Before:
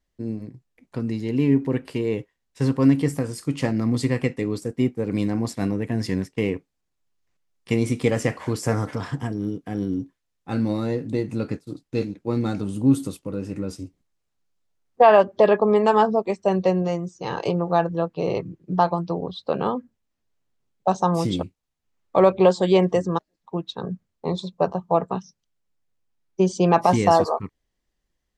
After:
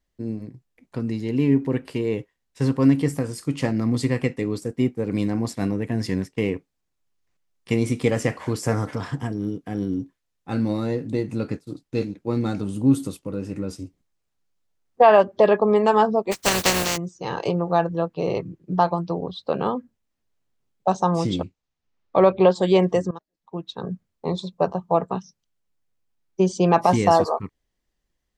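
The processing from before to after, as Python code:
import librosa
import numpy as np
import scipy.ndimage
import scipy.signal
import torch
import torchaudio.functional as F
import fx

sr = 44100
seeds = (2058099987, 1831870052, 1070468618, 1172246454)

y = fx.spec_flatten(x, sr, power=0.27, at=(16.31, 16.96), fade=0.02)
y = fx.lowpass(y, sr, hz=fx.line((21.04, 9000.0), (22.54, 4600.0)), slope=24, at=(21.04, 22.54), fade=0.02)
y = fx.edit(y, sr, fx.fade_in_from(start_s=23.11, length_s=0.78, floor_db=-18.5), tone=tone)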